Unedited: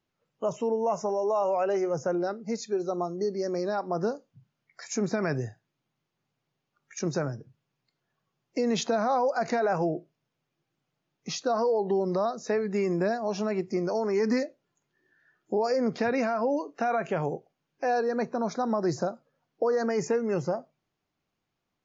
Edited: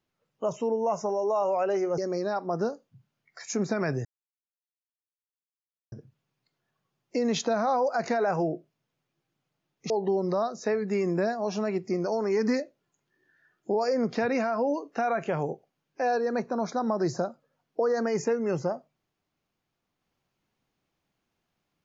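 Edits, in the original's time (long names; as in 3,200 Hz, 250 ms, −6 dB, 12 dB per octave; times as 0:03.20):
0:01.98–0:03.40: remove
0:05.47–0:07.34: silence
0:11.32–0:11.73: remove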